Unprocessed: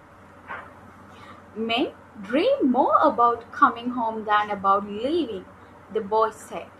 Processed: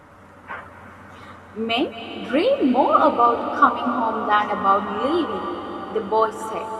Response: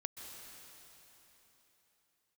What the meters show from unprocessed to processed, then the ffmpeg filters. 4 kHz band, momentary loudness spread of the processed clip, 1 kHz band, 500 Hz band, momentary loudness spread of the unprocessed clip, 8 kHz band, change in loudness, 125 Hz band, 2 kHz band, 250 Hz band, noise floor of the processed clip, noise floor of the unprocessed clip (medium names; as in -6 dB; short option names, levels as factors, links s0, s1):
+3.0 dB, 15 LU, +3.0 dB, +2.5 dB, 19 LU, no reading, +2.5 dB, +3.0 dB, +3.0 dB, +3.0 dB, -45 dBFS, -49 dBFS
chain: -filter_complex "[0:a]asplit=2[s0][s1];[1:a]atrim=start_sample=2205,asetrate=25578,aresample=44100[s2];[s1][s2]afir=irnorm=-1:irlink=0,volume=1[s3];[s0][s3]amix=inputs=2:normalize=0,volume=0.668"